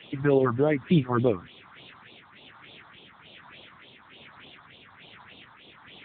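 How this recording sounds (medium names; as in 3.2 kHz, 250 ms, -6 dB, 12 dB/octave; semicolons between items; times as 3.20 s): a quantiser's noise floor 6-bit, dither triangular; tremolo triangle 1.2 Hz, depth 40%; phasing stages 4, 3.4 Hz, lowest notch 430–1700 Hz; AMR-NB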